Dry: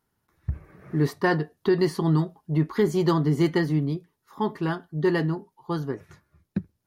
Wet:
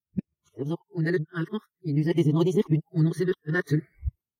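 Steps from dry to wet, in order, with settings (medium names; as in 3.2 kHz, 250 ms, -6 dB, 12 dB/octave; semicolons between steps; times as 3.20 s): reverse the whole clip; phase shifter stages 12, 0.33 Hz, lowest notch 780–1600 Hz; time stretch by phase-locked vocoder 0.64×; spectral noise reduction 21 dB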